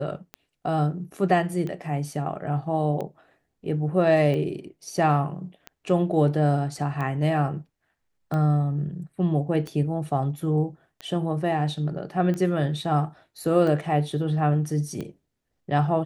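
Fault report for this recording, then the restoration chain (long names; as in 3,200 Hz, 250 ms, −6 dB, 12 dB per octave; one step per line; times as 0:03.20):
scratch tick 45 rpm −20 dBFS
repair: click removal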